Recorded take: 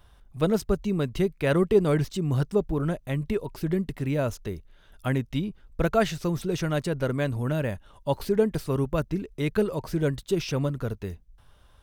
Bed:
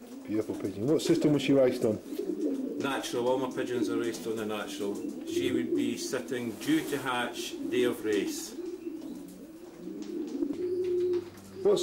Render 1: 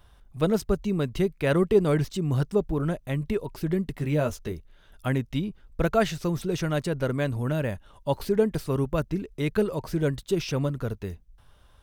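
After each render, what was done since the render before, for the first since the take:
0:03.98–0:04.52: double-tracking delay 13 ms −6 dB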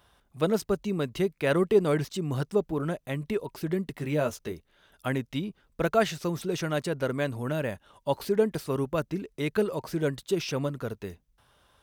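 high-pass filter 230 Hz 6 dB per octave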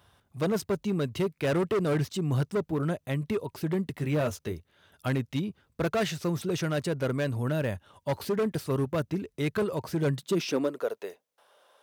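gain into a clipping stage and back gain 23.5 dB
high-pass filter sweep 88 Hz → 530 Hz, 0:09.93–0:10.88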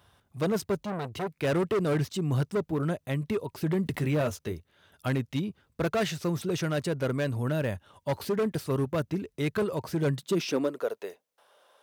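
0:00.79–0:01.32: saturating transformer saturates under 790 Hz
0:03.62–0:04.22: envelope flattener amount 50%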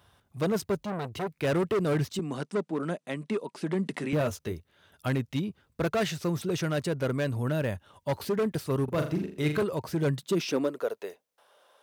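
0:02.19–0:04.13: elliptic band-pass filter 190–9,400 Hz
0:08.84–0:09.63: flutter between parallel walls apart 6.9 metres, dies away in 0.42 s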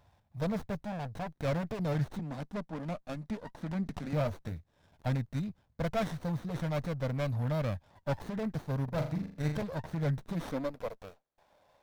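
phaser with its sweep stopped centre 1,900 Hz, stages 8
windowed peak hold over 17 samples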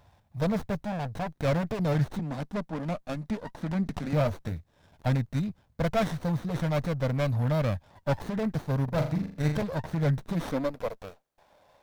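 level +5.5 dB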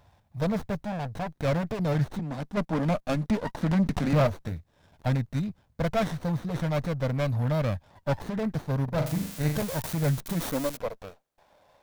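0:02.57–0:04.27: leveller curve on the samples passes 2
0:09.06–0:10.77: spike at every zero crossing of −22.5 dBFS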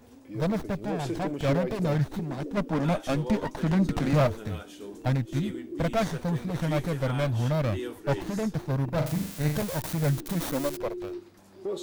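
mix in bed −8 dB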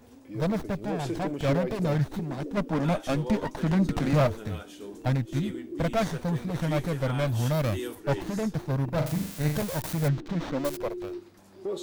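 0:07.27–0:07.95: high-shelf EQ 6,200 Hz +12 dB
0:10.08–0:10.65: high-frequency loss of the air 180 metres

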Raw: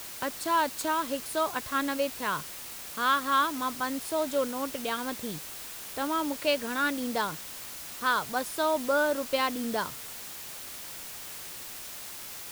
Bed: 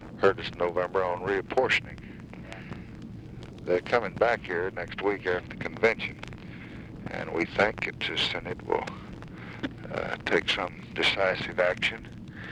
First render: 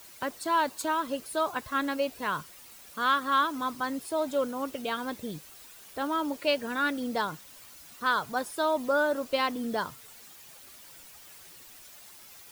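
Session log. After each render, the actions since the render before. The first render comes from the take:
broadband denoise 11 dB, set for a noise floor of −42 dBFS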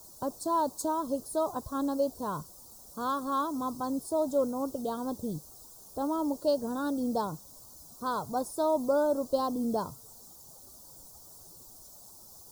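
Chebyshev band-stop filter 870–5,600 Hz, order 2
low-shelf EQ 190 Hz +8.5 dB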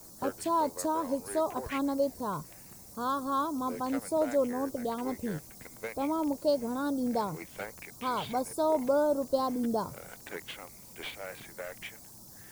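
mix in bed −16.5 dB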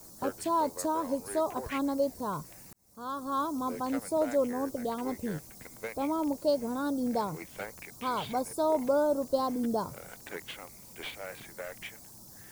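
0:02.73–0:03.45: fade in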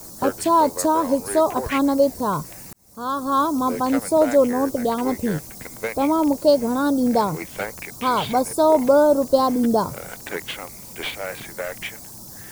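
level +11.5 dB

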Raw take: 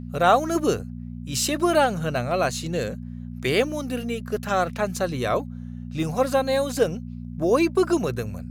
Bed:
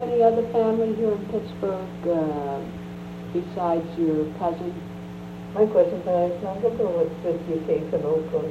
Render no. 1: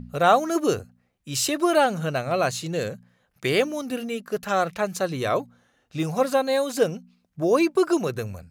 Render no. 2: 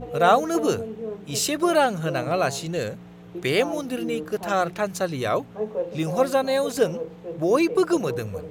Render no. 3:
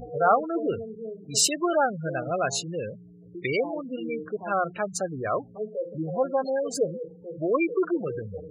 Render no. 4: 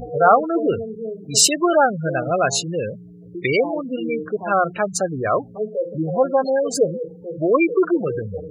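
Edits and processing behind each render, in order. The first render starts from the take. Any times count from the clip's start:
hum removal 60 Hz, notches 4
mix in bed −9.5 dB
gate on every frequency bin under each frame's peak −15 dB strong; tilt shelving filter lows −5 dB, about 1,500 Hz
level +7.5 dB; brickwall limiter −2 dBFS, peak gain reduction 1 dB

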